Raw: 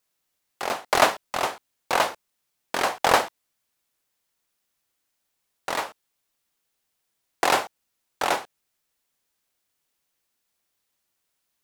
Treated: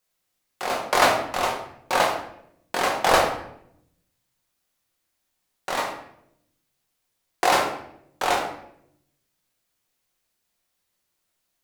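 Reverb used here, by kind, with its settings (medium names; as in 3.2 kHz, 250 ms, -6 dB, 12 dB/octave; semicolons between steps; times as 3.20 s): simulated room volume 170 m³, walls mixed, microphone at 0.99 m; trim -1.5 dB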